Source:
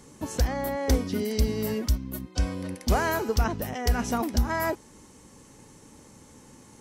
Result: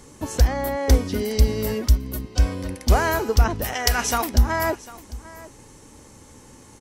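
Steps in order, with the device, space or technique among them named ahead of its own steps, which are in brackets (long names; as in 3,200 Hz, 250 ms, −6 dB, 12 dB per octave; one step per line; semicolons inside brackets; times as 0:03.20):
0:03.64–0:04.29: tilt shelving filter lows −8 dB, about 660 Hz
low shelf boost with a cut just above (low-shelf EQ 100 Hz +5.5 dB; parametric band 180 Hz −5.5 dB 1 octave)
single-tap delay 749 ms −19 dB
level +4.5 dB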